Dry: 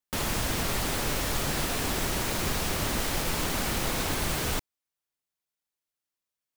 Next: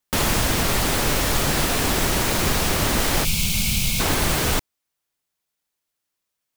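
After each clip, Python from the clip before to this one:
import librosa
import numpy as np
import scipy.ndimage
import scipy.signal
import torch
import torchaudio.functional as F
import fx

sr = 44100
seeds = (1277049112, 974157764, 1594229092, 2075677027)

y = fx.spec_box(x, sr, start_s=3.24, length_s=0.76, low_hz=220.0, high_hz=2100.0, gain_db=-19)
y = fx.rider(y, sr, range_db=10, speed_s=0.5)
y = F.gain(torch.from_numpy(y), 8.5).numpy()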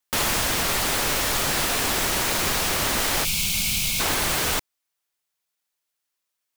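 y = fx.low_shelf(x, sr, hz=420.0, db=-9.5)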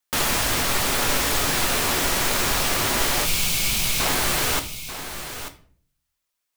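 y = x + 10.0 ** (-11.0 / 20.0) * np.pad(x, (int(889 * sr / 1000.0), 0))[:len(x)]
y = fx.room_shoebox(y, sr, seeds[0], volume_m3=49.0, walls='mixed', distance_m=0.3)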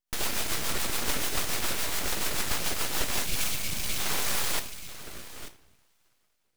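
y = fx.rev_double_slope(x, sr, seeds[1], early_s=0.49, late_s=4.2, knee_db=-18, drr_db=17.0)
y = fx.rotary_switch(y, sr, hz=7.0, then_hz=0.6, switch_at_s=2.8)
y = np.abs(y)
y = F.gain(torch.from_numpy(y), -2.5).numpy()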